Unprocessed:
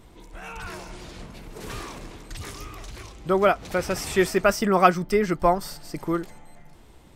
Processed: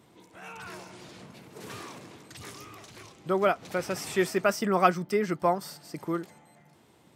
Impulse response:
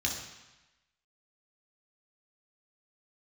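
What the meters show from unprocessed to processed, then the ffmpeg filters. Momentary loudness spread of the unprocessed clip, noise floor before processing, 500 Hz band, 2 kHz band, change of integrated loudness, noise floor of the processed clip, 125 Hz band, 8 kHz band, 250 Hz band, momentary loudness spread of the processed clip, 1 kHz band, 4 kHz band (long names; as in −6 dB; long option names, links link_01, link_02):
22 LU, −50 dBFS, −5.0 dB, −5.0 dB, −5.0 dB, −60 dBFS, −5.5 dB, −5.0 dB, −5.0 dB, 22 LU, −5.0 dB, −5.0 dB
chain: -af "highpass=frequency=110:width=0.5412,highpass=frequency=110:width=1.3066,volume=-5dB"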